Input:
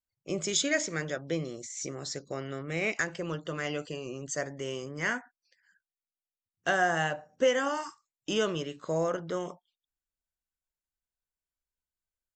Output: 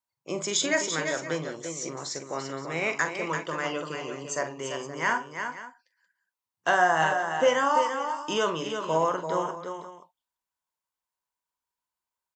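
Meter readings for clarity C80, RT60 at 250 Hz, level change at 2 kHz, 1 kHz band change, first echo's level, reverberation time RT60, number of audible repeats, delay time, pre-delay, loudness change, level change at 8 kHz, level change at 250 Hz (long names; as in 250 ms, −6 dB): no reverb audible, no reverb audible, +4.0 dB, +9.0 dB, −10.0 dB, no reverb audible, 4, 44 ms, no reverb audible, +4.0 dB, +3.0 dB, +0.5 dB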